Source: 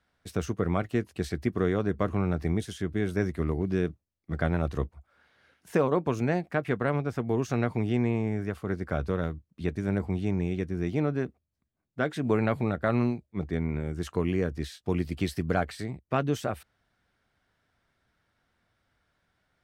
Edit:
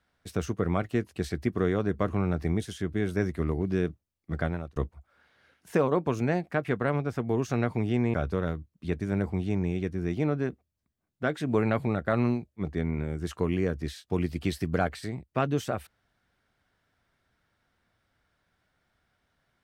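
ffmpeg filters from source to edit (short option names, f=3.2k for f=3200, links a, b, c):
-filter_complex "[0:a]asplit=3[a][b][c];[a]atrim=end=4.76,asetpts=PTS-STARTPTS,afade=t=out:st=4.37:d=0.39[d];[b]atrim=start=4.76:end=8.142,asetpts=PTS-STARTPTS,afade=t=in:d=0.004:c=hsin[e];[c]atrim=start=8.898[f];[d][e]concat=n=2:v=0:a=1[g];[g][f]acrossfade=d=0.004:c1=hsin:c2=hsin"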